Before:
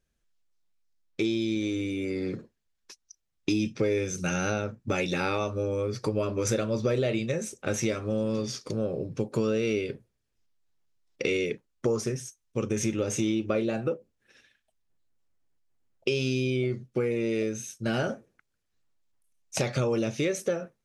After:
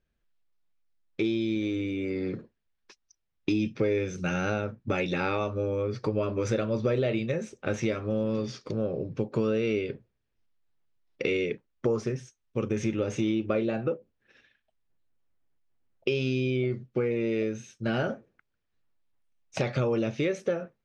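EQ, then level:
low-pass filter 3,500 Hz 12 dB per octave
0.0 dB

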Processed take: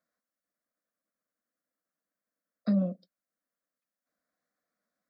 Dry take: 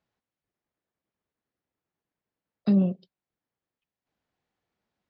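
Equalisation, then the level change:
high-pass filter 320 Hz 6 dB per octave
phaser with its sweep stopped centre 580 Hz, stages 8
+1.5 dB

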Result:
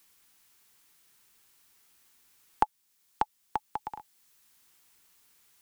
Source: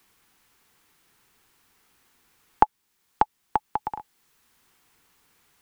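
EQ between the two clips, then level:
high-shelf EQ 2,900 Hz +11.5 dB
−8.5 dB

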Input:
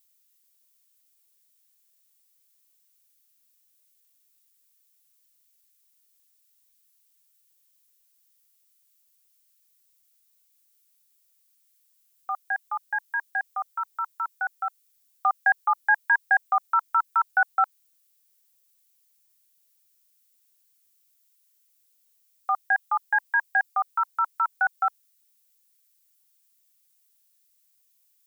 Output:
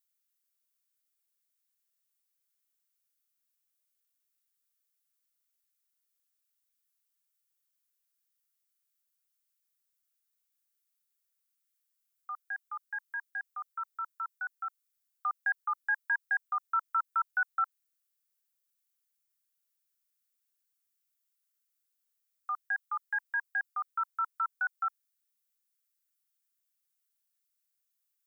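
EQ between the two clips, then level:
four-pole ladder high-pass 1,100 Hz, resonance 50%
−5.0 dB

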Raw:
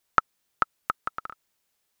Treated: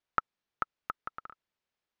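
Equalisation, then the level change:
high-frequency loss of the air 160 metres
−7.5 dB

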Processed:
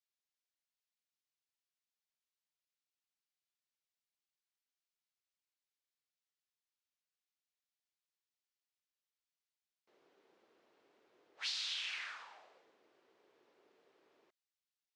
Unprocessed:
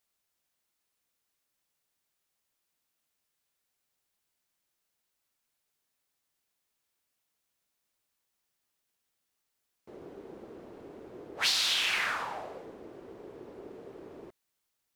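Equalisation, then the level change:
resonant band-pass 7,600 Hz, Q 0.52
high-frequency loss of the air 120 metres
−5.5 dB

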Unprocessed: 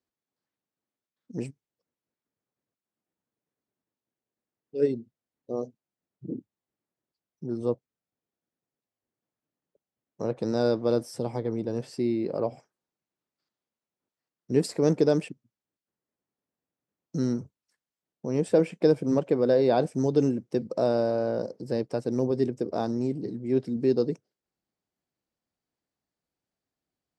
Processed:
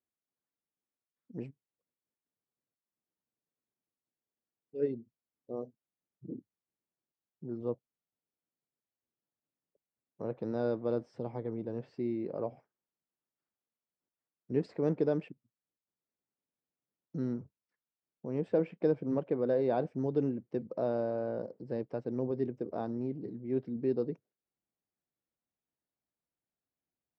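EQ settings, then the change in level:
low-pass filter 2,600 Hz 12 dB per octave
high-frequency loss of the air 60 metres
−7.5 dB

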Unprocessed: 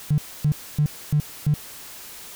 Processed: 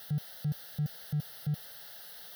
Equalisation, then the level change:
high-pass filter 140 Hz 12 dB per octave
phaser with its sweep stopped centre 1,600 Hz, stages 8
−5.5 dB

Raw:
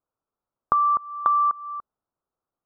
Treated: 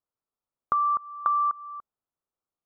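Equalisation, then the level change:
dynamic equaliser 1,400 Hz, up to +5 dB, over −34 dBFS, Q 2.1
−7.0 dB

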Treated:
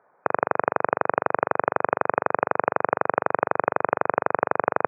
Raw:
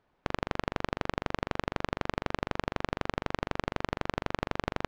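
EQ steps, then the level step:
high-pass filter 120 Hz 24 dB per octave
linear-phase brick-wall low-pass 2,500 Hz
flat-topped bell 840 Hz +13.5 dB 2.3 octaves
0.0 dB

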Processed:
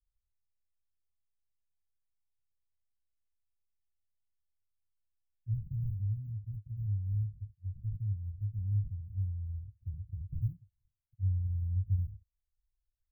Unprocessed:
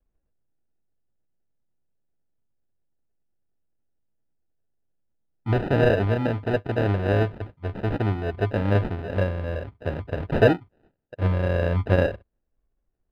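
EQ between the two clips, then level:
inverse Chebyshev band-stop filter 440–4,500 Hz, stop band 70 dB
dynamic equaliser 160 Hz, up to +5 dB, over −41 dBFS, Q 0.85
−8.5 dB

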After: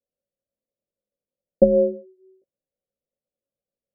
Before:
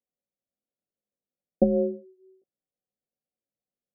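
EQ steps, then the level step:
low-pass with resonance 560 Hz, resonance Q 4.3
low-shelf EQ 170 Hz +11.5 dB
−4.5 dB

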